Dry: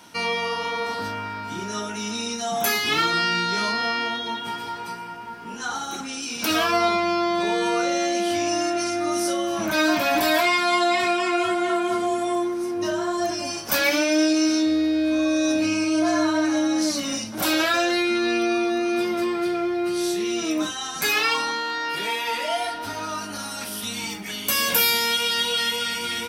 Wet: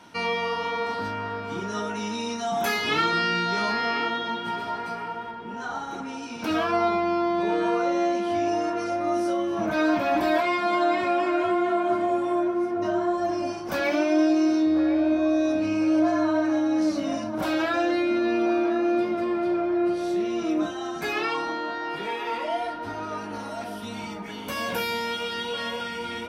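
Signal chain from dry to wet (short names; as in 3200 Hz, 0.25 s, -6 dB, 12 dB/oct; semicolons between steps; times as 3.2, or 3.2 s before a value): LPF 2400 Hz 6 dB/oct, from 5.31 s 1000 Hz; narrowing echo 1.046 s, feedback 60%, band-pass 660 Hz, level -8 dB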